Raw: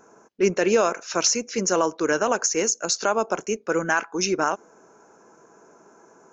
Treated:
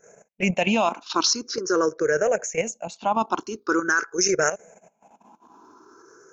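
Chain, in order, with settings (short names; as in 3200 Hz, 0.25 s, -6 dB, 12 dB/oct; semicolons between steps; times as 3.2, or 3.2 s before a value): moving spectral ripple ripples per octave 0.53, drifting +0.45 Hz, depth 20 dB; high shelf 2200 Hz +3 dB, from 1.56 s -7.5 dB, from 3.15 s +4 dB; level quantiser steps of 10 dB; gate -50 dBFS, range -12 dB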